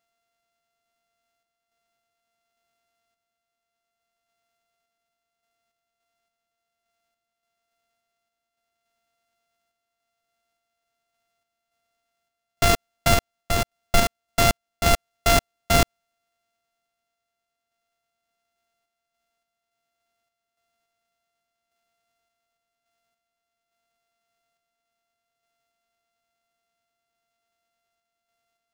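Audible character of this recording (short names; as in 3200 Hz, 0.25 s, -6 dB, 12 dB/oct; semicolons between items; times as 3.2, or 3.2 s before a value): a buzz of ramps at a fixed pitch in blocks of 64 samples; random-step tremolo, depth 55%; aliases and images of a low sample rate 17000 Hz, jitter 0%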